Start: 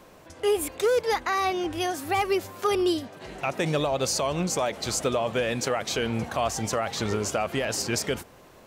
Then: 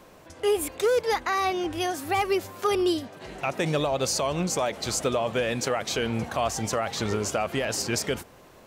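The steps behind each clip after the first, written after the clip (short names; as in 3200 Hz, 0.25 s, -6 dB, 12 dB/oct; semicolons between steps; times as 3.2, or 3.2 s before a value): nothing audible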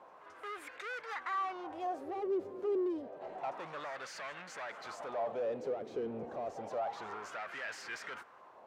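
soft clip -31 dBFS, distortion -7 dB; LFO band-pass sine 0.29 Hz 390–1700 Hz; pre-echo 0.219 s -18 dB; gain +2 dB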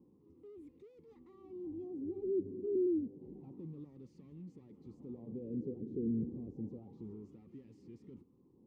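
inverse Chebyshev low-pass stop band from 590 Hz, stop band 40 dB; gain +11 dB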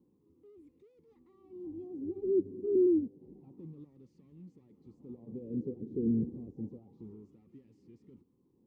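upward expander 1.5:1, over -53 dBFS; gain +7 dB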